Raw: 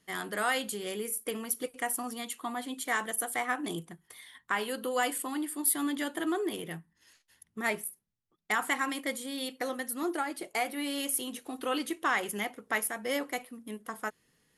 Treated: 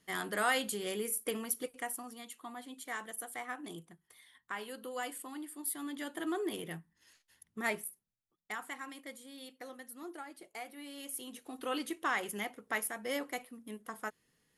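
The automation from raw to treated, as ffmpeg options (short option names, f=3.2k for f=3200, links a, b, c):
-af "volume=15dB,afade=t=out:st=1.3:d=0.77:silence=0.354813,afade=t=in:st=5.85:d=0.69:silence=0.446684,afade=t=out:st=7.63:d=1.03:silence=0.298538,afade=t=in:st=10.96:d=0.77:silence=0.354813"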